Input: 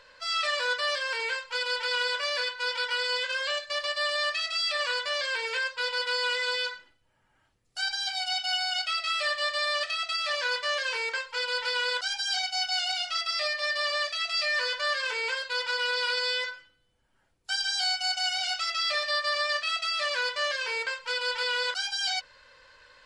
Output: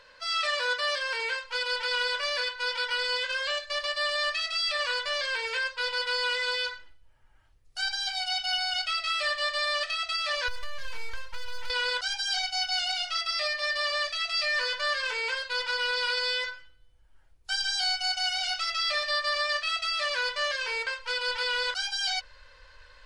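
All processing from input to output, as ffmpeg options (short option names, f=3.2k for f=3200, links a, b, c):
-filter_complex "[0:a]asettb=1/sr,asplit=3[a][b][c];[a]atrim=end=10.484[d];[b]atrim=start=10.48:end=11.7,asetpts=PTS-STARTPTS,afade=t=in:d=0.004:c=qsin,afade=t=out:st=1.216:d=0.004:c=qsin,aeval=exprs='if(lt(val(0),0),0.251*val(0),val(0))':c=same,acompressor=threshold=-35dB:ratio=10:attack=3.2:release=140:knee=1:detection=peak[e];[c]atrim=start=11.696[f];[d][e]acrossfade=d=0.004:c1=hsin:c2=qsin[g];[g][f]acrossfade=d=0.004:c1=qsin:c2=hsin,bandreject=f=7.4k:w=16,asubboost=boost=8.5:cutoff=62"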